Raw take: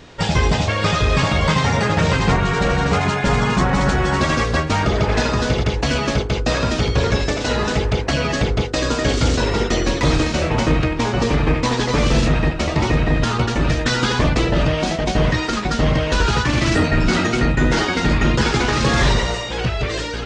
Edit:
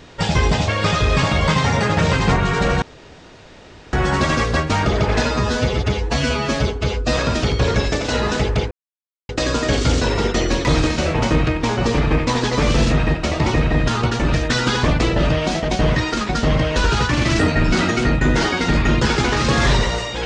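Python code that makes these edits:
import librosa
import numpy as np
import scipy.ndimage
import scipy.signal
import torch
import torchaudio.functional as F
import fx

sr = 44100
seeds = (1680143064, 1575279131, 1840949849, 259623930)

y = fx.edit(x, sr, fx.room_tone_fill(start_s=2.82, length_s=1.11),
    fx.stretch_span(start_s=5.25, length_s=1.28, factor=1.5),
    fx.silence(start_s=8.07, length_s=0.58), tone=tone)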